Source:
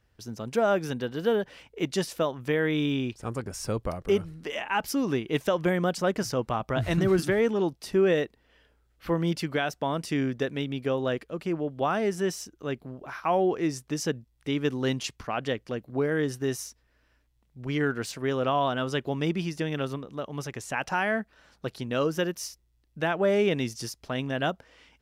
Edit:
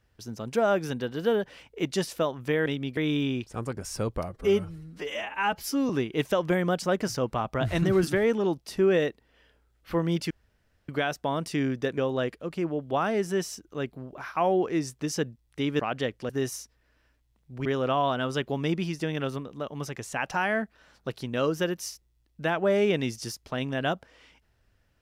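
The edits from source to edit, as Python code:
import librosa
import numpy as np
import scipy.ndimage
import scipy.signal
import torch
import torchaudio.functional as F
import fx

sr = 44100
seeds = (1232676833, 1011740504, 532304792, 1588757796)

y = fx.edit(x, sr, fx.stretch_span(start_s=3.98, length_s=1.07, factor=1.5),
    fx.insert_room_tone(at_s=9.46, length_s=0.58),
    fx.move(start_s=10.55, length_s=0.31, to_s=2.66),
    fx.cut(start_s=14.68, length_s=0.58),
    fx.cut(start_s=15.76, length_s=0.6),
    fx.cut(start_s=17.72, length_s=0.51), tone=tone)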